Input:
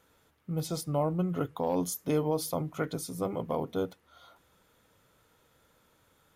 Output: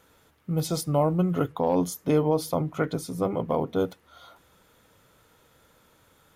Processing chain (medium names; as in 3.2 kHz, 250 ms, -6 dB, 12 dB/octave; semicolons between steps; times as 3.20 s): 1.52–3.80 s: treble shelf 4.3 kHz -8 dB; trim +6 dB